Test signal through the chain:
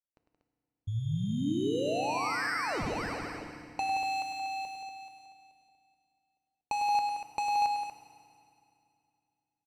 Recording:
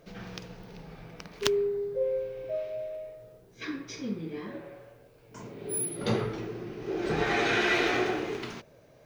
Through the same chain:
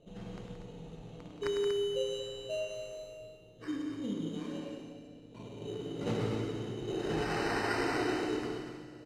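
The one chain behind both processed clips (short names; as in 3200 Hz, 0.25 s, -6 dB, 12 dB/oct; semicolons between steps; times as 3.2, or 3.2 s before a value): low-pass opened by the level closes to 680 Hz, open at -22 dBFS; high shelf 5000 Hz -10.5 dB; compressor 2.5:1, threshold -29 dBFS; sample-rate reducer 3400 Hz, jitter 0%; air absorption 78 m; loudspeakers at several distances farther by 35 m -8 dB, 60 m -8 dB, 82 m -8 dB; FDN reverb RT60 2.6 s, low-frequency decay 1.35×, high-frequency decay 1×, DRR 7.5 dB; gain -3 dB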